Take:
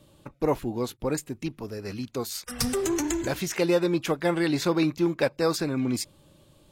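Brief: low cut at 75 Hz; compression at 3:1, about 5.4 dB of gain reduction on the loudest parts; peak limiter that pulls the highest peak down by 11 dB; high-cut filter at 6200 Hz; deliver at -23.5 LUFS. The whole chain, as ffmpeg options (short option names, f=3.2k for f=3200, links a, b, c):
-af "highpass=75,lowpass=6.2k,acompressor=threshold=-26dB:ratio=3,volume=12dB,alimiter=limit=-14dB:level=0:latency=1"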